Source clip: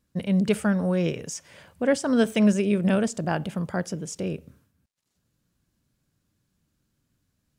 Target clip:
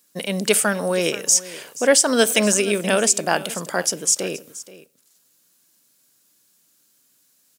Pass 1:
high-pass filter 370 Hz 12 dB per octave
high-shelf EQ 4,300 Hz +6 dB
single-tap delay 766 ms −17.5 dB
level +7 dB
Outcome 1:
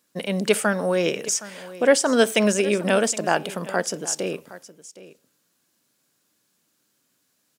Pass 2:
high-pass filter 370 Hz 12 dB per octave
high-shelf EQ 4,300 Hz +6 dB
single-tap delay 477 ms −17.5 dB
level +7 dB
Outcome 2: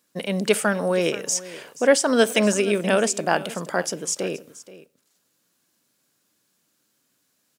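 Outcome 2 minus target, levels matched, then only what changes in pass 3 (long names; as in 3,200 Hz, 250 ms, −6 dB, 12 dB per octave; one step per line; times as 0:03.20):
8,000 Hz band −5.5 dB
change: high-shelf EQ 4,300 Hz +17.5 dB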